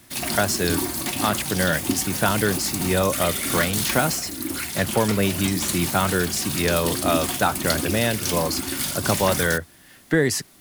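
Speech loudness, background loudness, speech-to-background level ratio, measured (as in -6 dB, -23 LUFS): -24.0 LUFS, -25.5 LUFS, 1.5 dB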